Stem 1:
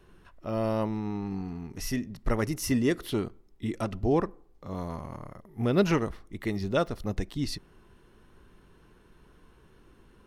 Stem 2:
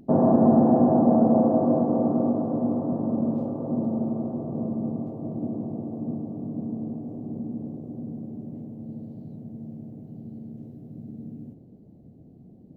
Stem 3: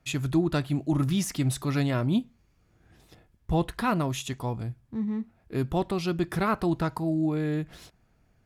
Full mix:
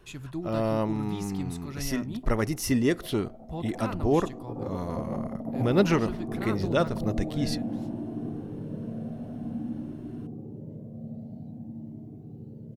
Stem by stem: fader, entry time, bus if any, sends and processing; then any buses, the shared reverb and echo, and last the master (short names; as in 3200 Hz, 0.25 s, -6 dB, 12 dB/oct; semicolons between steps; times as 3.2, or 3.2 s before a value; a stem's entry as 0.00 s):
+1.5 dB, 0.00 s, no send, dry
-1.0 dB, 2.15 s, no send, negative-ratio compressor -28 dBFS, ratio -0.5; cascading flanger rising 0.51 Hz
-11.0 dB, 0.00 s, no send, dry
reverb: off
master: dry